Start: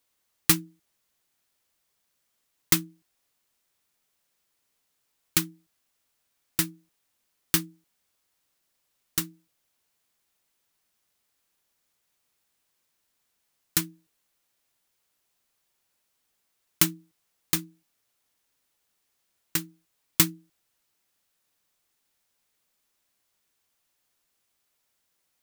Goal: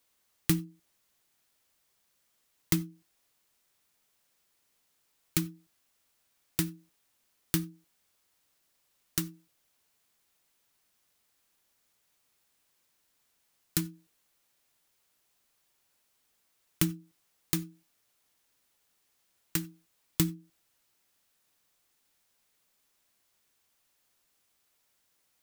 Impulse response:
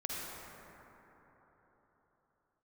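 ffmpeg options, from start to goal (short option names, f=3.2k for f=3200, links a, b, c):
-filter_complex "[0:a]acrossover=split=350[a][b];[b]acompressor=threshold=-31dB:ratio=5[c];[a][c]amix=inputs=2:normalize=0,asplit=2[d][e];[1:a]atrim=start_sample=2205,atrim=end_sample=4410[f];[e][f]afir=irnorm=-1:irlink=0,volume=-16dB[g];[d][g]amix=inputs=2:normalize=0,volume=1dB"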